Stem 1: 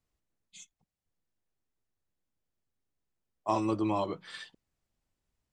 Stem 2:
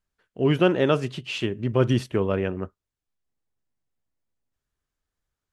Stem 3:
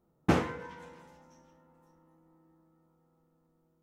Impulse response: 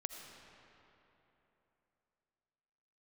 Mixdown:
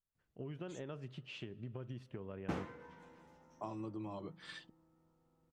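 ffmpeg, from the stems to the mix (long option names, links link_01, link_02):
-filter_complex "[0:a]equalizer=frequency=160:width_type=o:width=2.8:gain=6.5,adelay=150,volume=-5dB[link_01];[1:a]highshelf=frequency=6400:gain=-9,acompressor=threshold=-26dB:ratio=3,volume=-16.5dB,asplit=3[link_02][link_03][link_04];[link_03]volume=-18dB[link_05];[2:a]adelay=2200,volume=-5dB,asplit=2[link_06][link_07];[link_07]volume=-23dB[link_08];[link_04]apad=whole_len=265660[link_09];[link_06][link_09]sidechaincompress=threshold=-49dB:ratio=12:attack=12:release=1310[link_10];[link_01][link_02]amix=inputs=2:normalize=0,equalizer=frequency=140:width_type=o:width=0.77:gain=5.5,acompressor=threshold=-42dB:ratio=6,volume=0dB[link_11];[3:a]atrim=start_sample=2205[link_12];[link_05][link_08]amix=inputs=2:normalize=0[link_13];[link_13][link_12]afir=irnorm=-1:irlink=0[link_14];[link_10][link_11][link_14]amix=inputs=3:normalize=0,highshelf=frequency=7400:gain=-6"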